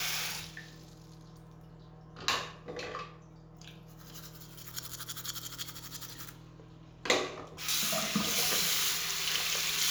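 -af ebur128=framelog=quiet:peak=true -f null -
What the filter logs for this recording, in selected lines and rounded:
Integrated loudness:
  I:         -32.0 LUFS
  Threshold: -43.9 LUFS
Loudness range:
  LRA:        12.4 LU
  Threshold: -55.4 LUFS
  LRA low:   -42.2 LUFS
  LRA high:  -29.9 LUFS
True peak:
  Peak:      -10.6 dBFS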